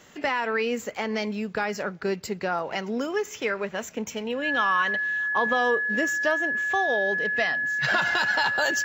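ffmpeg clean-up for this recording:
ffmpeg -i in.wav -af "bandreject=frequency=1700:width=30" out.wav

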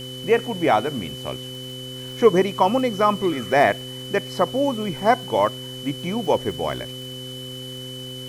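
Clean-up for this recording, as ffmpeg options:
ffmpeg -i in.wav -af "adeclick=threshold=4,bandreject=frequency=128.1:width_type=h:width=4,bandreject=frequency=256.2:width_type=h:width=4,bandreject=frequency=384.3:width_type=h:width=4,bandreject=frequency=512.4:width_type=h:width=4,bandreject=frequency=3000:width=30,afwtdn=0.0056" out.wav

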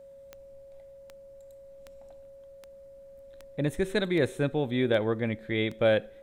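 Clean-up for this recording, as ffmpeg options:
ffmpeg -i in.wav -af "adeclick=threshold=4,bandreject=frequency=550:width=30" out.wav

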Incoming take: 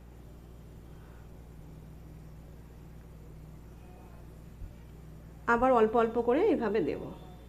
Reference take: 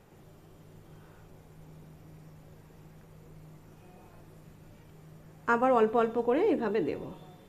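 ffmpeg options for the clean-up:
ffmpeg -i in.wav -filter_complex "[0:a]bandreject=frequency=59:width_type=h:width=4,bandreject=frequency=118:width_type=h:width=4,bandreject=frequency=177:width_type=h:width=4,bandreject=frequency=236:width_type=h:width=4,bandreject=frequency=295:width_type=h:width=4,bandreject=frequency=354:width_type=h:width=4,asplit=3[link_01][link_02][link_03];[link_01]afade=type=out:start_time=4.6:duration=0.02[link_04];[link_02]highpass=frequency=140:width=0.5412,highpass=frequency=140:width=1.3066,afade=type=in:start_time=4.6:duration=0.02,afade=type=out:start_time=4.72:duration=0.02[link_05];[link_03]afade=type=in:start_time=4.72:duration=0.02[link_06];[link_04][link_05][link_06]amix=inputs=3:normalize=0,asplit=3[link_07][link_08][link_09];[link_07]afade=type=out:start_time=5.57:duration=0.02[link_10];[link_08]highpass=frequency=140:width=0.5412,highpass=frequency=140:width=1.3066,afade=type=in:start_time=5.57:duration=0.02,afade=type=out:start_time=5.69:duration=0.02[link_11];[link_09]afade=type=in:start_time=5.69:duration=0.02[link_12];[link_10][link_11][link_12]amix=inputs=3:normalize=0" out.wav

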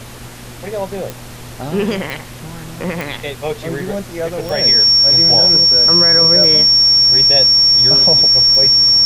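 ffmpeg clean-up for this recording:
ffmpeg -i in.wav -af "adeclick=threshold=4,bandreject=frequency=121:width_type=h:width=4,bandreject=frequency=242:width_type=h:width=4,bandreject=frequency=363:width_type=h:width=4,bandreject=frequency=484:width_type=h:width=4,bandreject=frequency=605:width_type=h:width=4,bandreject=frequency=5500:width=30,afftdn=noise_reduction=27:noise_floor=-32" out.wav

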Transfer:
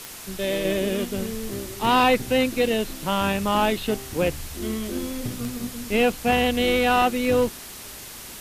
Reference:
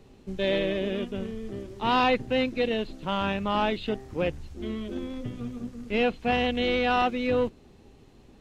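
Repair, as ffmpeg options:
ffmpeg -i in.wav -af "adeclick=threshold=4,afwtdn=0.013,asetnsamples=nb_out_samples=441:pad=0,asendcmd='0.65 volume volume -4.5dB',volume=0dB" out.wav

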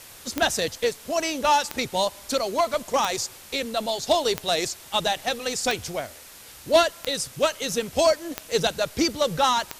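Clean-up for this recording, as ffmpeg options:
ffmpeg -i in.wav -af "adeclick=threshold=4,afftdn=noise_reduction=24:noise_floor=-45" out.wav

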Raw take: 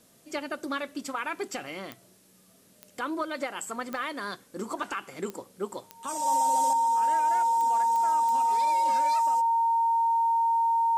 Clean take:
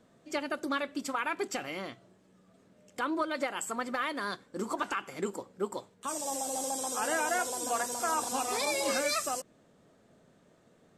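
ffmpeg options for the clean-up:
ffmpeg -i in.wav -af "adeclick=threshold=4,bandreject=frequency=920:width=30,agate=range=-21dB:threshold=-50dB,asetnsamples=nb_out_samples=441:pad=0,asendcmd='6.73 volume volume 8.5dB',volume=0dB" out.wav

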